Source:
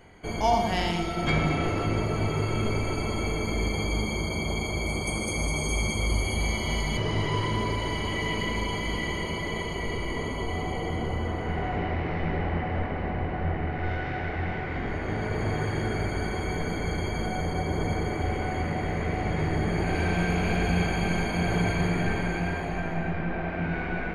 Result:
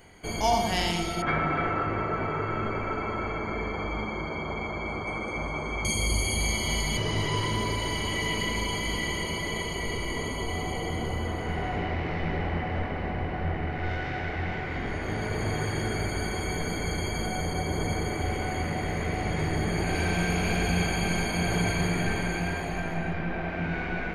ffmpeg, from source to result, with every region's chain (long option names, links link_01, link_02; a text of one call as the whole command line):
ffmpeg -i in.wav -filter_complex "[0:a]asettb=1/sr,asplit=3[link_01][link_02][link_03];[link_01]atrim=end=1.224[link_04];[link_02]atrim=start=1.22:end=5.85,asetpts=PTS-STARTPTS,afade=type=in:duration=0.004:curve=qsin,afade=type=out:start_time=4.626:duration=0.004:curve=qsin,lowpass=frequency=1500:width_type=q:width=2.2,lowshelf=frequency=220:gain=-7,aecho=1:1:284:0.335,atrim=end_sample=204183[link_05];[link_03]atrim=start=5.846[link_06];[link_04][link_05]acrossfade=duration=0.004:curve1=hsin:curve2=qsin[link_07];[link_07][link_06]acrossfade=duration=0.004:curve1=qsin:curve2=hsin,highshelf=frequency=4000:gain=11,acontrast=28,volume=-6.5dB" out.wav